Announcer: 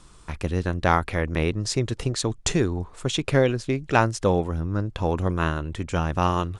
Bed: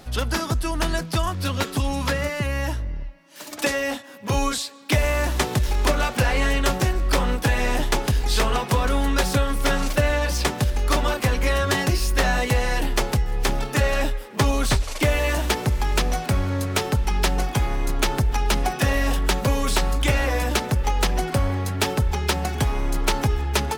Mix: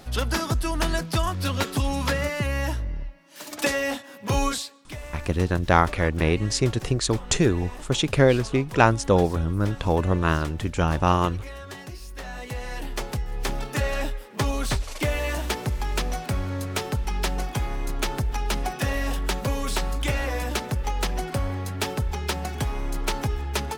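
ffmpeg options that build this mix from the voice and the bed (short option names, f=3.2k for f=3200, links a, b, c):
-filter_complex "[0:a]adelay=4850,volume=2dB[a];[1:a]volume=11.5dB,afade=t=out:st=4.47:d=0.43:silence=0.149624,afade=t=in:st=12.19:d=1.39:silence=0.237137[b];[a][b]amix=inputs=2:normalize=0"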